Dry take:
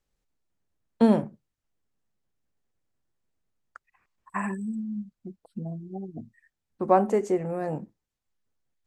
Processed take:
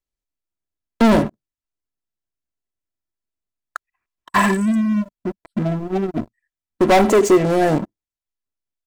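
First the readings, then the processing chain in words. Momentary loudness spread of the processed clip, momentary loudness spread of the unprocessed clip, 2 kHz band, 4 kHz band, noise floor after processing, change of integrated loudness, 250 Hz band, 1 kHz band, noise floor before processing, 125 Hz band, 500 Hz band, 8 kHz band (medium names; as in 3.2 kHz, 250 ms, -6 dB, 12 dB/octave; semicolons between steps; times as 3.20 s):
22 LU, 20 LU, +16.5 dB, no reading, under -85 dBFS, +9.5 dB, +10.0 dB, +9.5 dB, -85 dBFS, +10.5 dB, +10.0 dB, +20.0 dB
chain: treble shelf 2 kHz +3.5 dB; waveshaping leveller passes 5; comb 3 ms, depth 35%; trim -2 dB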